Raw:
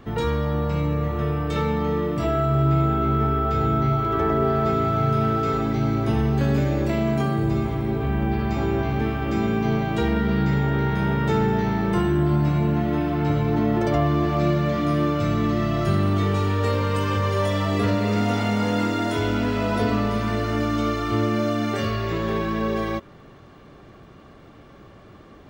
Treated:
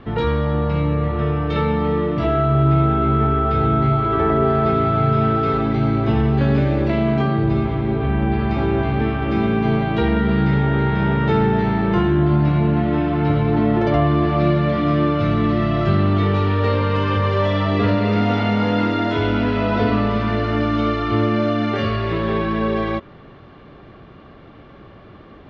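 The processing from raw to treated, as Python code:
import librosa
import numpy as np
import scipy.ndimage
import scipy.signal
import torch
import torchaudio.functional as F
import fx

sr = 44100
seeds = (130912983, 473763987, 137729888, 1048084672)

y = scipy.signal.sosfilt(scipy.signal.butter(4, 4100.0, 'lowpass', fs=sr, output='sos'), x)
y = y * librosa.db_to_amplitude(4.0)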